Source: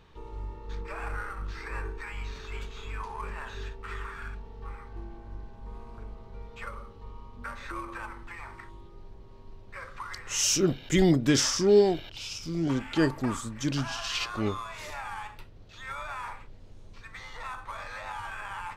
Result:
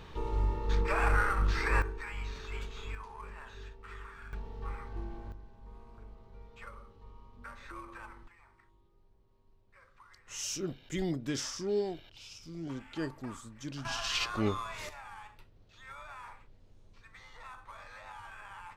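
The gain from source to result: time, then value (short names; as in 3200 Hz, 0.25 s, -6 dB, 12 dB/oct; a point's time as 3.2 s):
+8 dB
from 1.82 s -2 dB
from 2.95 s -9 dB
from 4.33 s +1 dB
from 5.32 s -8.5 dB
from 8.28 s -19 dB
from 10.28 s -12 dB
from 13.85 s -1 dB
from 14.89 s -10 dB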